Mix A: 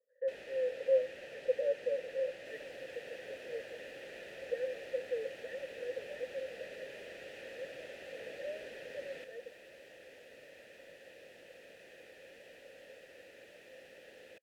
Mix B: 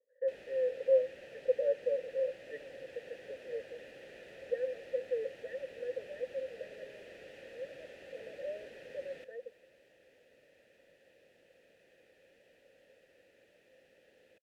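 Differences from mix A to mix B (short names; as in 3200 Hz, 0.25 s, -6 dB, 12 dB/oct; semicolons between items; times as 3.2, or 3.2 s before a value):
first sound -4.5 dB; second sound -11.5 dB; master: add low shelf 400 Hz +5.5 dB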